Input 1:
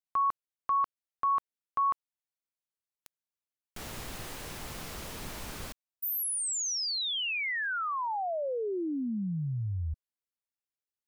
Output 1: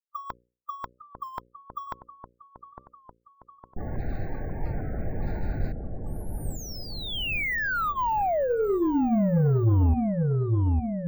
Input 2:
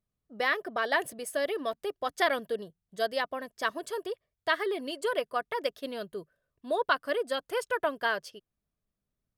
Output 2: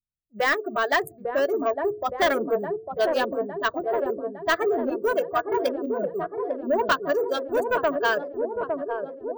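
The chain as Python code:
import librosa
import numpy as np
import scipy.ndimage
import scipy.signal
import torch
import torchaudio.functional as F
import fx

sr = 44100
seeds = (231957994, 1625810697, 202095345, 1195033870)

p1 = fx.wiener(x, sr, points=15)
p2 = fx.low_shelf(p1, sr, hz=150.0, db=8.5)
p3 = fx.env_lowpass(p2, sr, base_hz=380.0, full_db=-27.0)
p4 = np.repeat(p3[::2], 2)[:len(p3)]
p5 = fx.noise_reduce_blind(p4, sr, reduce_db=25)
p6 = fx.hum_notches(p5, sr, base_hz=60, count=9)
p7 = p6 + fx.echo_wet_lowpass(p6, sr, ms=858, feedback_pct=60, hz=740.0, wet_db=-4.0, dry=0)
p8 = 10.0 ** (-23.0 / 20.0) * np.tanh(p7 / 10.0 ** (-23.0 / 20.0))
p9 = fx.record_warp(p8, sr, rpm=33.33, depth_cents=100.0)
y = F.gain(torch.from_numpy(p9), 8.5).numpy()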